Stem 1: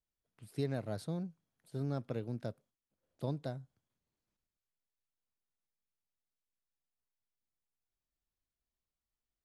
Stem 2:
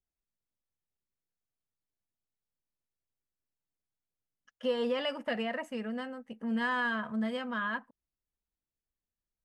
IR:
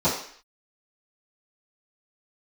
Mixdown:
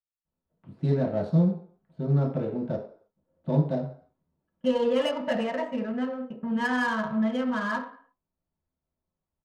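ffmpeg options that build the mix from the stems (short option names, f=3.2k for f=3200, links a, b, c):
-filter_complex "[0:a]adelay=250,volume=1.5dB,asplit=2[a][b];[b]volume=-9.5dB[c];[1:a]agate=range=-22dB:threshold=-47dB:ratio=16:detection=peak,volume=1dB,asplit=2[d][e];[e]volume=-14dB[f];[2:a]atrim=start_sample=2205[g];[c][f]amix=inputs=2:normalize=0[h];[h][g]afir=irnorm=-1:irlink=0[i];[a][d][i]amix=inputs=3:normalize=0,adynamicsmooth=sensitivity=5.5:basefreq=1.9k"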